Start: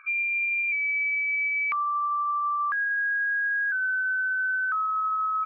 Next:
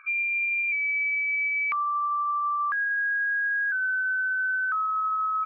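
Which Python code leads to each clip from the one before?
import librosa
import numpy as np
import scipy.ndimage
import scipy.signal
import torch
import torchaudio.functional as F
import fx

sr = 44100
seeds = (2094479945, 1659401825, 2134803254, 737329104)

y = x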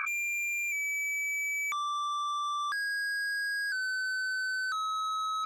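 y = 10.0 ** (-33.5 / 20.0) * np.tanh(x / 10.0 ** (-33.5 / 20.0))
y = fx.env_flatten(y, sr, amount_pct=100)
y = F.gain(torch.from_numpy(y), 2.0).numpy()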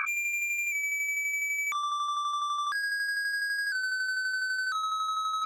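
y = fx.tremolo_shape(x, sr, shape='saw_down', hz=12.0, depth_pct=45)
y = F.gain(torch.from_numpy(y), 4.0).numpy()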